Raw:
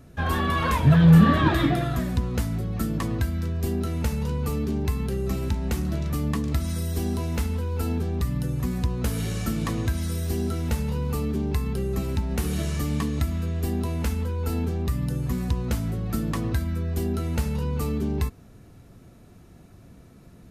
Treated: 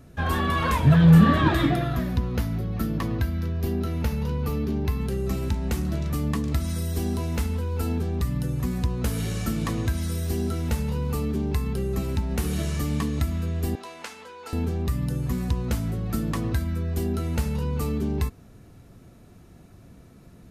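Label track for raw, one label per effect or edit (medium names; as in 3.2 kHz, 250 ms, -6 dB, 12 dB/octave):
1.760000	5.010000	peaking EQ 8.1 kHz -11.5 dB 0.56 oct
13.750000	14.530000	band-pass 730–7400 Hz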